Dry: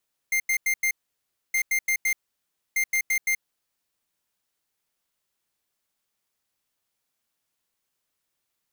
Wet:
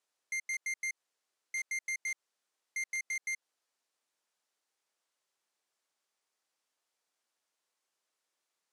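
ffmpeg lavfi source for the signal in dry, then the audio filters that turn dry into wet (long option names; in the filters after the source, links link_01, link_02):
-f lavfi -i "aevalsrc='0.0708*(2*lt(mod(2100*t,1),0.5)-1)*clip(min(mod(mod(t,1.22),0.17),0.08-mod(mod(t,1.22),0.17))/0.005,0,1)*lt(mod(t,1.22),0.68)':duration=3.66:sample_rate=44100"
-af "equalizer=frequency=2900:width=0.77:gain=-3.5,alimiter=level_in=7.5dB:limit=-24dB:level=0:latency=1:release=100,volume=-7.5dB,highpass=380,lowpass=7800"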